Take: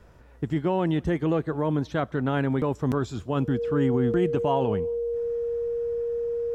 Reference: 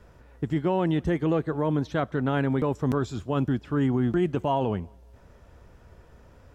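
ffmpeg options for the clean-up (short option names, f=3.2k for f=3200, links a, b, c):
-af "bandreject=f=470:w=30"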